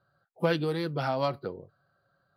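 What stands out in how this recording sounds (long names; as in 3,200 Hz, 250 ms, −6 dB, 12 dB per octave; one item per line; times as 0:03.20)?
background noise floor −76 dBFS
spectral slope −5.0 dB per octave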